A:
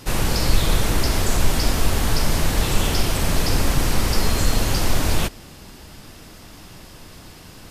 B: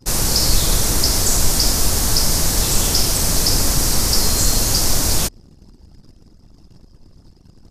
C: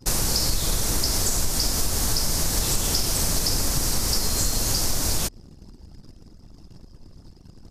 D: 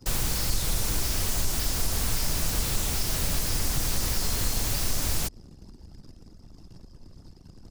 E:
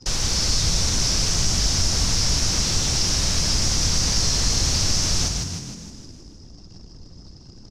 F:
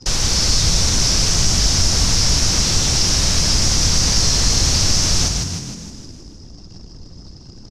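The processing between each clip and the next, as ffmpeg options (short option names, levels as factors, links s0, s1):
-af "anlmdn=1,highshelf=f=4000:t=q:w=1.5:g=9.5"
-af "acompressor=threshold=0.112:ratio=6"
-filter_complex "[0:a]acrossover=split=170|4500[s0][s1][s2];[s1]alimiter=level_in=1.58:limit=0.0631:level=0:latency=1,volume=0.631[s3];[s2]aeval=exprs='(mod(15.8*val(0)+1,2)-1)/15.8':c=same[s4];[s0][s3][s4]amix=inputs=3:normalize=0,volume=0.794"
-filter_complex "[0:a]lowpass=f=5700:t=q:w=3.6,asplit=2[s0][s1];[s1]asplit=8[s2][s3][s4][s5][s6][s7][s8][s9];[s2]adelay=155,afreqshift=40,volume=0.562[s10];[s3]adelay=310,afreqshift=80,volume=0.32[s11];[s4]adelay=465,afreqshift=120,volume=0.182[s12];[s5]adelay=620,afreqshift=160,volume=0.105[s13];[s6]adelay=775,afreqshift=200,volume=0.0596[s14];[s7]adelay=930,afreqshift=240,volume=0.0339[s15];[s8]adelay=1085,afreqshift=280,volume=0.0193[s16];[s9]adelay=1240,afreqshift=320,volume=0.011[s17];[s10][s11][s12][s13][s14][s15][s16][s17]amix=inputs=8:normalize=0[s18];[s0][s18]amix=inputs=2:normalize=0,volume=1.26"
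-af "aresample=32000,aresample=44100,volume=1.78"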